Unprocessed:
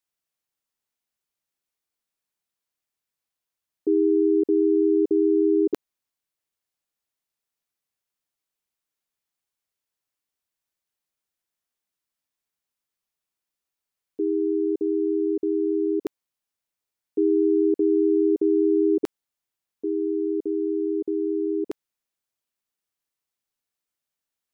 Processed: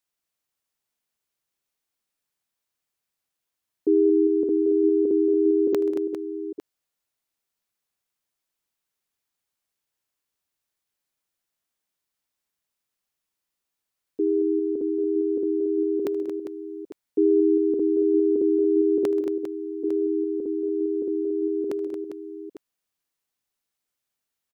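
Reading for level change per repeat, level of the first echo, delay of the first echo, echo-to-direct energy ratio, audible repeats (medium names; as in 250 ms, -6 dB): no regular repeats, -18.0 dB, 77 ms, -5.0 dB, 6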